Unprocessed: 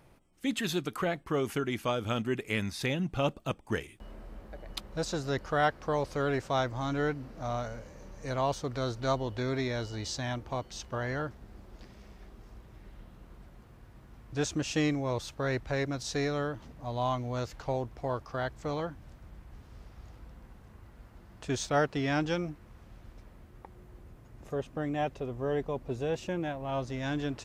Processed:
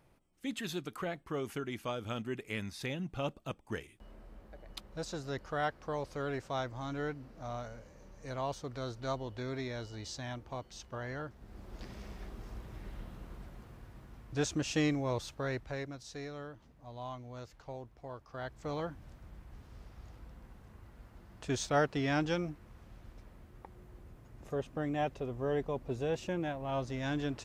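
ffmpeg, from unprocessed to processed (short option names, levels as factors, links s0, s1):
-af "volume=5.96,afade=t=in:st=11.33:d=0.59:silence=0.251189,afade=t=out:st=12.95:d=1.51:silence=0.446684,afade=t=out:st=15.12:d=0.89:silence=0.298538,afade=t=in:st=18.22:d=0.72:silence=0.298538"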